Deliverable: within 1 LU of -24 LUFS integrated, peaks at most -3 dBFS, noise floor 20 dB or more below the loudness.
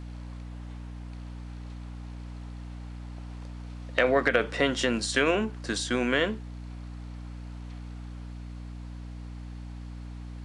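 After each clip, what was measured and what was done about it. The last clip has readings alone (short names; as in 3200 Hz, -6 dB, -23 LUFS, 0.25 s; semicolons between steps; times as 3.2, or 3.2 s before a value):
hum 60 Hz; harmonics up to 300 Hz; hum level -37 dBFS; loudness -26.5 LUFS; peak -6.5 dBFS; loudness target -24.0 LUFS
-> de-hum 60 Hz, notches 5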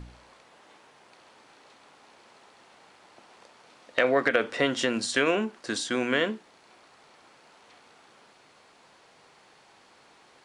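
hum none; loudness -26.5 LUFS; peak -6.0 dBFS; loudness target -24.0 LUFS
-> gain +2.5 dB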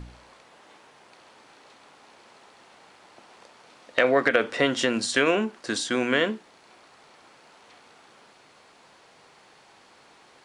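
loudness -24.0 LUFS; peak -3.5 dBFS; noise floor -56 dBFS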